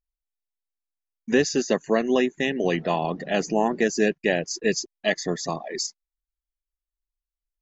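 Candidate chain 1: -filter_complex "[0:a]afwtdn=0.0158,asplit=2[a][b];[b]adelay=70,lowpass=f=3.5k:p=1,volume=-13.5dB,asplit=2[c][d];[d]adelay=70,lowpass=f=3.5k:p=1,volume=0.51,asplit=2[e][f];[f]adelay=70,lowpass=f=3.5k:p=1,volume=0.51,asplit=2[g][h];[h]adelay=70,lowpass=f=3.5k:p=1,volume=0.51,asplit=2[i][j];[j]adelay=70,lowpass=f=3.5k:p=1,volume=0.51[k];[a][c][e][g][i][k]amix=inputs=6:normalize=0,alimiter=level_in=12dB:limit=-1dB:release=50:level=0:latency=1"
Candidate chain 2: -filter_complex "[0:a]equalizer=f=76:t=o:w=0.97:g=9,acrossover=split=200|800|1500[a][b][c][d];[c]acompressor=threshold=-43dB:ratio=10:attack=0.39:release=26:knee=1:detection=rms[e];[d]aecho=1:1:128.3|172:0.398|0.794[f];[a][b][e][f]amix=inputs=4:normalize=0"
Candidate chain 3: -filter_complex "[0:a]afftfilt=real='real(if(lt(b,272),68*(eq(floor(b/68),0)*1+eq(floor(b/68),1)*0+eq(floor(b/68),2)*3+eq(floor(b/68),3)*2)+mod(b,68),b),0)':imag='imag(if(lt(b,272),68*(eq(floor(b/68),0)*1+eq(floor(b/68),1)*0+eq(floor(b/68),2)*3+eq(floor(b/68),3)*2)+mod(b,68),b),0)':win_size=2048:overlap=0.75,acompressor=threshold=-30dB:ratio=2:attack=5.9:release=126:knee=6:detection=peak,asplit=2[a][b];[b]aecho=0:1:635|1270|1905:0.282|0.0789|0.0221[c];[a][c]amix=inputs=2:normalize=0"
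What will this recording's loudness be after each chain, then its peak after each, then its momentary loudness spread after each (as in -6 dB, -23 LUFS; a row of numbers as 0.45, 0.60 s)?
-14.5, -24.5, -28.5 LUFS; -1.0, -7.5, -14.0 dBFS; 6, 7, 14 LU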